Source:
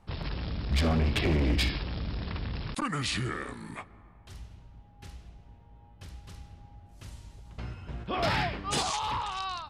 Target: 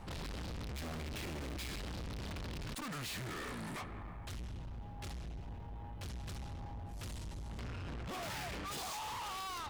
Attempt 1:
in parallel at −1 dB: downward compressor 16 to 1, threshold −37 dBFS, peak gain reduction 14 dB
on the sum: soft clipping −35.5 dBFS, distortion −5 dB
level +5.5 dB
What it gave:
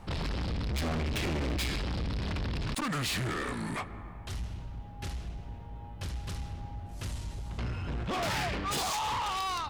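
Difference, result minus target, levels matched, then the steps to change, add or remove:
soft clipping: distortion −4 dB
change: soft clipping −47 dBFS, distortion −1 dB

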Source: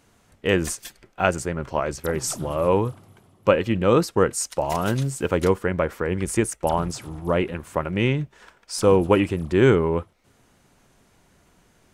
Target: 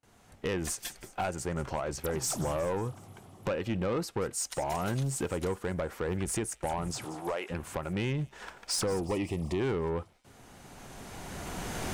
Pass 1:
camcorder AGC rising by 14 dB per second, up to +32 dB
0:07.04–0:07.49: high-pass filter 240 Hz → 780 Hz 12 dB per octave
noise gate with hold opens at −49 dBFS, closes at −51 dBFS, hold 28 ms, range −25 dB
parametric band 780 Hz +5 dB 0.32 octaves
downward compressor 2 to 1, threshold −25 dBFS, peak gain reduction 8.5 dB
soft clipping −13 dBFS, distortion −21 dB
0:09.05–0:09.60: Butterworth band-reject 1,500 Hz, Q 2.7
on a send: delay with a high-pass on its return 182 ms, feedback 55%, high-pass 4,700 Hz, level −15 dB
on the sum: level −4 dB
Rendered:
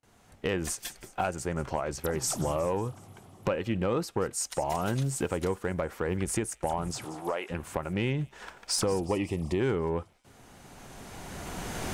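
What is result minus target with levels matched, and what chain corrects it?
soft clipping: distortion −9 dB
camcorder AGC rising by 14 dB per second, up to +32 dB
0:07.04–0:07.49: high-pass filter 240 Hz → 780 Hz 12 dB per octave
noise gate with hold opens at −49 dBFS, closes at −51 dBFS, hold 28 ms, range −25 dB
parametric band 780 Hz +5 dB 0.32 octaves
downward compressor 2 to 1, threshold −25 dBFS, peak gain reduction 8.5 dB
soft clipping −21 dBFS, distortion −12 dB
0:09.05–0:09.60: Butterworth band-reject 1,500 Hz, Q 2.7
on a send: delay with a high-pass on its return 182 ms, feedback 55%, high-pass 4,700 Hz, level −15 dB
on the sum: level −4 dB

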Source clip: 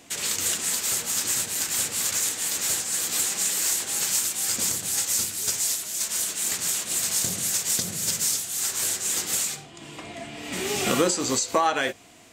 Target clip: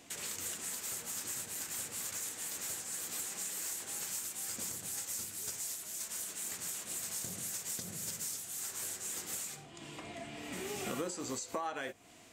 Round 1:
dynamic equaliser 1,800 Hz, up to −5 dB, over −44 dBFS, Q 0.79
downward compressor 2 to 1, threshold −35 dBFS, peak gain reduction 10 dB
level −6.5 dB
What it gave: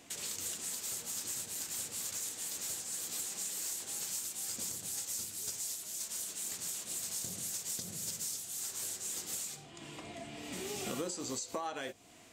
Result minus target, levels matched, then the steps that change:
2,000 Hz band −3.5 dB
change: dynamic equaliser 4,200 Hz, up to −5 dB, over −44 dBFS, Q 0.79

